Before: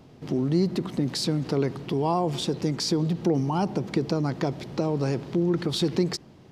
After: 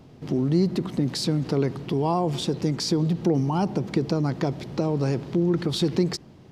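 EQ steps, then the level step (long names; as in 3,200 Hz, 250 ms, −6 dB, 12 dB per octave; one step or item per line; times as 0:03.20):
low-shelf EQ 240 Hz +3.5 dB
0.0 dB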